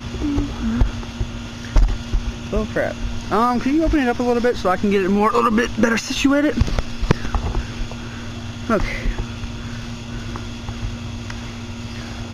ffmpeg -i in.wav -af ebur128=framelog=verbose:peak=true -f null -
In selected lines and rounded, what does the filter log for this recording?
Integrated loudness:
  I:         -21.8 LUFS
  Threshold: -31.8 LUFS
Loudness range:
  LRA:         9.1 LU
  Threshold: -41.1 LUFS
  LRA low:   -27.1 LUFS
  LRA high:  -18.0 LUFS
True peak:
  Peak:       -4.8 dBFS